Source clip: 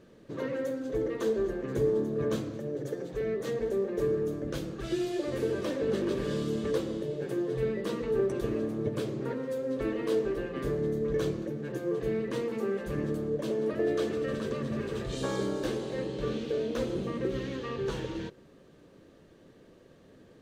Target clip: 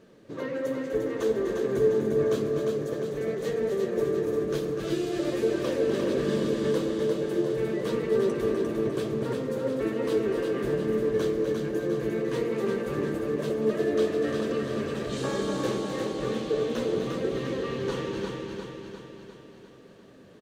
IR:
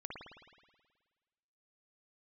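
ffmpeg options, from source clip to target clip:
-filter_complex "[0:a]lowshelf=frequency=80:gain=-9.5,asplit=2[link_01][link_02];[link_02]aecho=0:1:249:0.398[link_03];[link_01][link_03]amix=inputs=2:normalize=0,flanger=delay=4.4:depth=8:regen=61:speed=1.1:shape=sinusoidal,asplit=2[link_04][link_05];[link_05]aecho=0:1:351|702|1053|1404|1755|2106|2457|2808:0.596|0.334|0.187|0.105|0.0586|0.0328|0.0184|0.0103[link_06];[link_04][link_06]amix=inputs=2:normalize=0,volume=6dB"

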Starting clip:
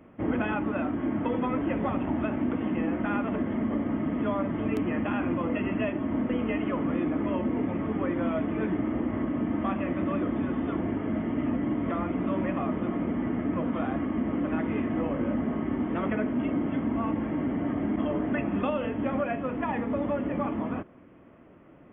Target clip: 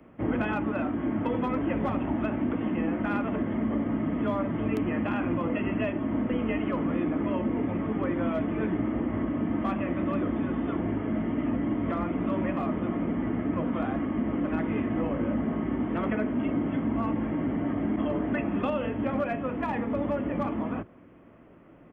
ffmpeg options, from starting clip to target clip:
ffmpeg -i in.wav -filter_complex "[0:a]acrossover=split=170|590|1500[link_01][link_02][link_03][link_04];[link_01]asplit=2[link_05][link_06];[link_06]adelay=18,volume=-3.5dB[link_07];[link_05][link_07]amix=inputs=2:normalize=0[link_08];[link_03]aeval=exprs='clip(val(0),-1,0.0282)':channel_layout=same[link_09];[link_08][link_02][link_09][link_04]amix=inputs=4:normalize=0" out.wav

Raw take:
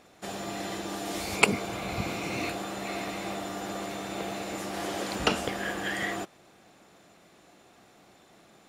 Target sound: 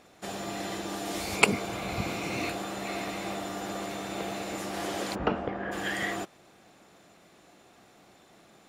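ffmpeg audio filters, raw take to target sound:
ffmpeg -i in.wav -filter_complex "[0:a]asplit=3[link_01][link_02][link_03];[link_01]afade=type=out:start_time=5.14:duration=0.02[link_04];[link_02]lowpass=1400,afade=type=in:start_time=5.14:duration=0.02,afade=type=out:start_time=5.71:duration=0.02[link_05];[link_03]afade=type=in:start_time=5.71:duration=0.02[link_06];[link_04][link_05][link_06]amix=inputs=3:normalize=0" out.wav

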